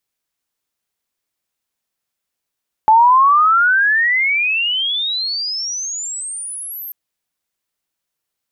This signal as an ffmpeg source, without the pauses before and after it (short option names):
-f lavfi -i "aevalsrc='pow(10,(-6-20.5*t/4.04)/20)*sin(2*PI*860*4.04/log(13000/860)*(exp(log(13000/860)*t/4.04)-1))':d=4.04:s=44100"